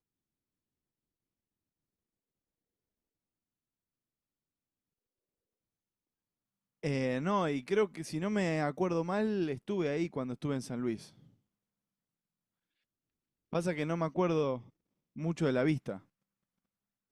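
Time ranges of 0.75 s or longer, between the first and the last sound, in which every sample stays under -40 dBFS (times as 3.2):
11.03–13.53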